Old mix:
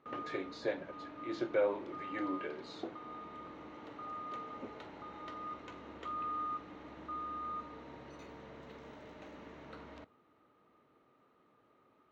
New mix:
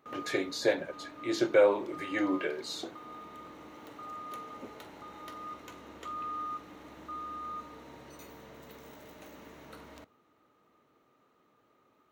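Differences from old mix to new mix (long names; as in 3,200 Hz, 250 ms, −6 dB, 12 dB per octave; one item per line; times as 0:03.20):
speech +8.0 dB
master: remove high-frequency loss of the air 170 metres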